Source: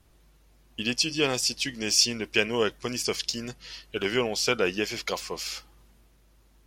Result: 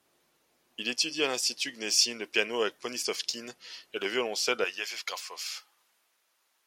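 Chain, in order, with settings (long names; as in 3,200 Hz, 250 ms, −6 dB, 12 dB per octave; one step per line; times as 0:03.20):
high-pass filter 330 Hz 12 dB per octave, from 0:04.64 920 Hz
level −2.5 dB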